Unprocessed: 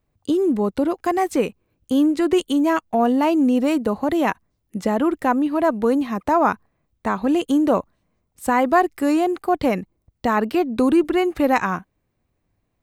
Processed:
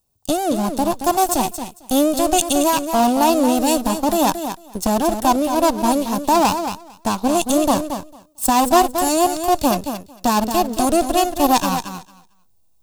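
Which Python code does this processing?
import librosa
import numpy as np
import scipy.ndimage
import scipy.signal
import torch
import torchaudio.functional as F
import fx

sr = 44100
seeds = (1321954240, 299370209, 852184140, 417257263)

p1 = fx.lower_of_two(x, sr, delay_ms=1.1)
p2 = fx.peak_eq(p1, sr, hz=1900.0, db=-14.5, octaves=0.67)
p3 = fx.echo_feedback(p2, sr, ms=225, feedback_pct=18, wet_db=-8.0)
p4 = fx.backlash(p3, sr, play_db=-27.0)
p5 = p3 + (p4 * 10.0 ** (-4.5 / 20.0))
p6 = fx.bass_treble(p5, sr, bass_db=-5, treble_db=15)
y = p6 * 10.0 ** (1.0 / 20.0)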